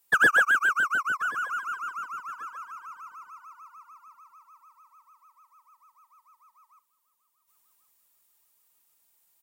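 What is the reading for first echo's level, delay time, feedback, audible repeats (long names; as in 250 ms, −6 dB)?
−19.0 dB, 1,082 ms, 25%, 2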